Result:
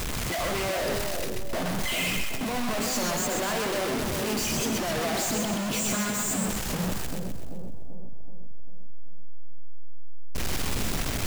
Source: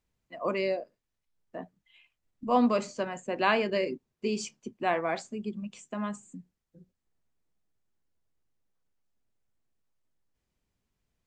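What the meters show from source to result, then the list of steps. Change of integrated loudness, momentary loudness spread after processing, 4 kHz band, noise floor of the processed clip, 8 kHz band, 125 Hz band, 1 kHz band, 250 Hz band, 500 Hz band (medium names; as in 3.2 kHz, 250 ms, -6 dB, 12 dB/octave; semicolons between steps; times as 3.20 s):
+2.5 dB, 9 LU, +12.0 dB, -30 dBFS, +19.5 dB, +13.0 dB, +0.5 dB, +3.5 dB, +1.0 dB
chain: one-bit comparator; two-band feedback delay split 710 Hz, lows 387 ms, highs 128 ms, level -3.5 dB; warped record 33 1/3 rpm, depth 100 cents; trim +4.5 dB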